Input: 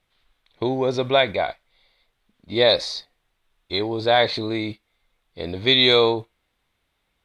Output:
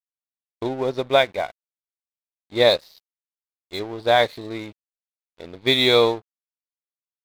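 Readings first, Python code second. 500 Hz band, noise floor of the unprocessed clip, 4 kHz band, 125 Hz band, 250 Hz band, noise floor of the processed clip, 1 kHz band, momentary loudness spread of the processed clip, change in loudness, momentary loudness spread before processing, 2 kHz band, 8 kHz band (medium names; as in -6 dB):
0.0 dB, -74 dBFS, -2.5 dB, -3.0 dB, -2.5 dB, under -85 dBFS, +0.5 dB, 17 LU, 0.0 dB, 14 LU, -0.5 dB, no reading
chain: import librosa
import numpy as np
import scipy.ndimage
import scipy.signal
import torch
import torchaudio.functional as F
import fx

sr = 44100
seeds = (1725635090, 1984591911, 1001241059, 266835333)

y = fx.high_shelf(x, sr, hz=5900.0, db=-11.0)
y = np.sign(y) * np.maximum(np.abs(y) - 10.0 ** (-35.0 / 20.0), 0.0)
y = fx.upward_expand(y, sr, threshold_db=-40.0, expansion=1.5)
y = F.gain(torch.from_numpy(y), 3.0).numpy()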